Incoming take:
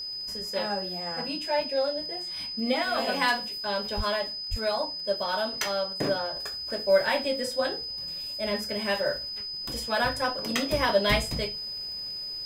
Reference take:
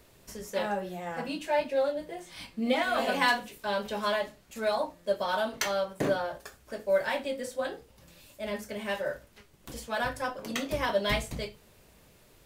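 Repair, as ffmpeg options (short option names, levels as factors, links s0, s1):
-filter_complex "[0:a]adeclick=t=4,bandreject=f=5000:w=30,asplit=3[s0][s1][s2];[s0]afade=t=out:st=3.96:d=0.02[s3];[s1]highpass=f=140:w=0.5412,highpass=f=140:w=1.3066,afade=t=in:st=3.96:d=0.02,afade=t=out:st=4.08:d=0.02[s4];[s2]afade=t=in:st=4.08:d=0.02[s5];[s3][s4][s5]amix=inputs=3:normalize=0,asplit=3[s6][s7][s8];[s6]afade=t=out:st=4.5:d=0.02[s9];[s7]highpass=f=140:w=0.5412,highpass=f=140:w=1.3066,afade=t=in:st=4.5:d=0.02,afade=t=out:st=4.62:d=0.02[s10];[s8]afade=t=in:st=4.62:d=0.02[s11];[s9][s10][s11]amix=inputs=3:normalize=0,asetnsamples=n=441:p=0,asendcmd='6.36 volume volume -4.5dB',volume=1"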